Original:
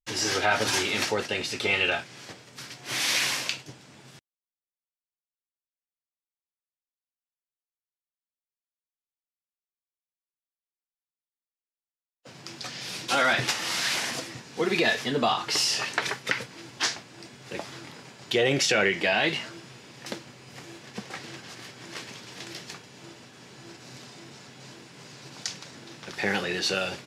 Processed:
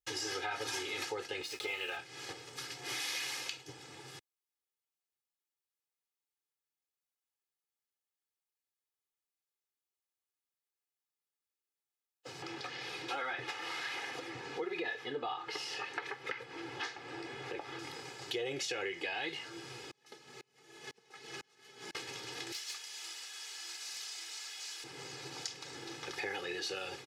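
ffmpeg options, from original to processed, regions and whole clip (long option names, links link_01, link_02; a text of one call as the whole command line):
ffmpeg -i in.wav -filter_complex "[0:a]asettb=1/sr,asplit=3[link_01][link_02][link_03];[link_01]atrim=end=1.434[link_04];[link_02]atrim=start=1.43:end=1.97,asetpts=PTS-STARTPTS,afade=type=in:duration=0.004:curve=qsin,afade=type=out:start_time=0.536:duration=0.004:curve=qsin,highpass=49,lowshelf=frequency=250:gain=-7.5,aeval=exprs='sgn(val(0))*max(abs(val(0))-0.00794,0)':channel_layout=same[link_05];[link_03]atrim=start=1.966[link_06];[link_04][link_05]acrossfade=duration=0.004:curve1=hsin:curve2=qsin[link_07];[link_07][link_06]acrossfade=duration=0.004:curve1=qsin:curve2=hsin,asettb=1/sr,asplit=3[link_08][link_09][link_10];[link_08]atrim=end=12.424[link_11];[link_09]atrim=start=12.42:end=17.79,asetpts=PTS-STARTPTS,afade=type=in:duration=0.004:curve=qsin,afade=type=out:start_time=5.366:duration=0.004:curve=qsin,acompressor=mode=upward:threshold=-31dB:ratio=2.5:attack=3.2:release=140:knee=2.83:detection=peak,bass=frequency=250:gain=-4,treble=frequency=4000:gain=-15[link_12];[link_10]atrim=start=17.786[link_13];[link_11][link_12]acrossfade=duration=0.004:curve1=hsin:curve2=qsin[link_14];[link_14][link_13]acrossfade=duration=0.004:curve1=qsin:curve2=hsin,asettb=1/sr,asplit=3[link_15][link_16][link_17];[link_15]atrim=end=19.914[link_18];[link_16]atrim=start=19.91:end=21.95,asetpts=PTS-STARTPTS,afade=type=in:duration=0.004:curve=qsin,afade=type=out:start_time=2.036:duration=0.004:curve=qsin,aecho=1:1:4.7:0.63,atrim=end_sample=89964,aeval=exprs='val(0)*pow(10,-35*if(lt(mod(-2*n/s,1),2*abs(-2)/1000),1-mod(-2*n/s,1)/(2*abs(-2)/1000),(mod(-2*n/s,1)-2*abs(-2)/1000)/(1-2*abs(-2)/1000))/20)':channel_layout=same[link_19];[link_17]atrim=start=21.946[link_20];[link_18][link_19]acrossfade=duration=0.004:curve1=hsin:curve2=qsin[link_21];[link_21][link_20]acrossfade=duration=0.004:curve1=qsin:curve2=hsin,asettb=1/sr,asplit=3[link_22][link_23][link_24];[link_22]atrim=end=22.524[link_25];[link_23]atrim=start=22.52:end=24.84,asetpts=PTS-STARTPTS,afade=type=in:duration=0.004:curve=qsin,afade=type=out:start_time=2.316:duration=0.004:curve=qsin,aderivative,asplit=2[link_26][link_27];[link_27]highpass=frequency=720:poles=1,volume=19dB,asoftclip=type=tanh:threshold=-24.5dB[link_28];[link_26][link_28]amix=inputs=2:normalize=0,lowpass=frequency=4700:poles=1,volume=-6dB[link_29];[link_24]atrim=start=24.836[link_30];[link_25][link_29]acrossfade=duration=0.004:curve1=hsin:curve2=qsin[link_31];[link_31][link_30]acrossfade=duration=0.004:curve1=qsin:curve2=hsin,highpass=frequency=130:poles=1,aecho=1:1:2.4:0.85,acompressor=threshold=-39dB:ratio=3,volume=-1.5dB" out.wav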